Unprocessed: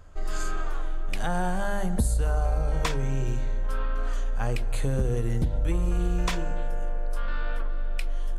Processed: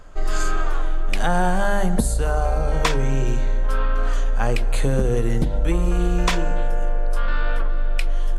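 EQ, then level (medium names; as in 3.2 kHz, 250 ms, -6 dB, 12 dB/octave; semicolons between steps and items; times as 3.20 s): peaking EQ 80 Hz -14.5 dB 0.9 oct; treble shelf 9.6 kHz -5 dB; +8.5 dB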